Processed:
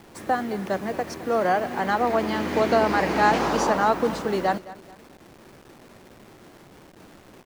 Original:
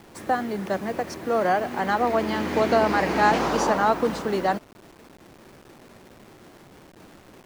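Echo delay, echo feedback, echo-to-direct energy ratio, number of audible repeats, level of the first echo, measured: 215 ms, 35%, −17.5 dB, 2, −18.0 dB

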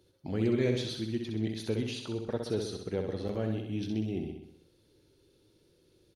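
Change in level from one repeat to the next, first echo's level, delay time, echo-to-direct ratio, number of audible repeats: −5.0 dB, −5.5 dB, 64 ms, −4.0 dB, 6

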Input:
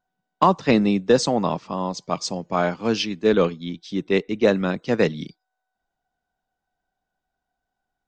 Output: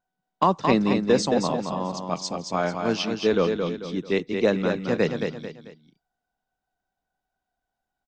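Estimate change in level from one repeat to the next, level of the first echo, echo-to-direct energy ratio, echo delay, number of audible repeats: −8.5 dB, −5.5 dB, −5.0 dB, 221 ms, 3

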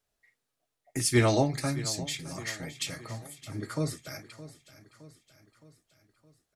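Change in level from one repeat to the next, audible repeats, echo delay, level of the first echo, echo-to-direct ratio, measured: −5.5 dB, 4, 616 ms, −16.0 dB, −14.5 dB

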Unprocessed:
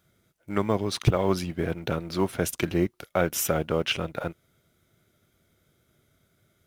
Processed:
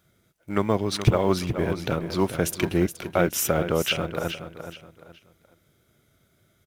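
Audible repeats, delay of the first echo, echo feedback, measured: 3, 422 ms, 31%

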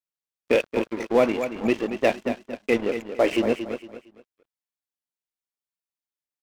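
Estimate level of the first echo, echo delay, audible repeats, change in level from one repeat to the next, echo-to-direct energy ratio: −9.5 dB, 229 ms, 3, −10.5 dB, −9.0 dB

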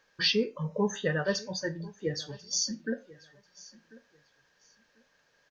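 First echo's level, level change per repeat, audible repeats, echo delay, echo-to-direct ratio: −21.0 dB, −13.5 dB, 2, 1,042 ms, −21.0 dB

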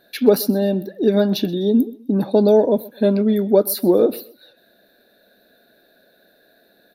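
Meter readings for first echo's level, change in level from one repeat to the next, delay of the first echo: −21.5 dB, −9.5 dB, 127 ms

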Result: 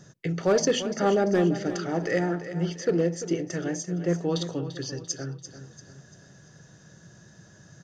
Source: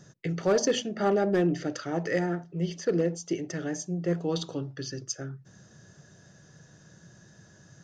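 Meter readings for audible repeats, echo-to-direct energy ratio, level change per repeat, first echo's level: 4, −11.0 dB, −7.5 dB, −12.0 dB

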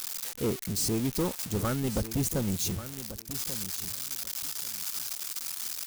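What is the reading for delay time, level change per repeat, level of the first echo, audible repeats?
1,138 ms, −15.0 dB, −13.0 dB, 2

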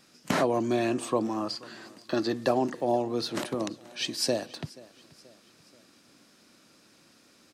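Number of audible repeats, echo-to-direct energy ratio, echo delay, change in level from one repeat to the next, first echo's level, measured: 3, −21.0 dB, 481 ms, −6.0 dB, −22.0 dB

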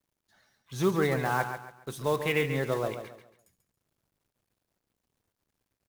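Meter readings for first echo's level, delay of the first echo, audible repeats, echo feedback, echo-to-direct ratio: −9.0 dB, 139 ms, 3, 32%, −8.5 dB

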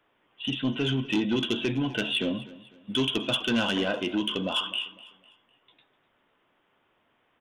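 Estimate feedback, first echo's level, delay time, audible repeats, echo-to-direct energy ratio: 37%, −19.0 dB, 251 ms, 2, −18.5 dB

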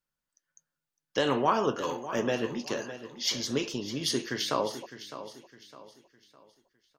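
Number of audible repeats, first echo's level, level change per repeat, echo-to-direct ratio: 3, −13.0 dB, −8.5 dB, −12.5 dB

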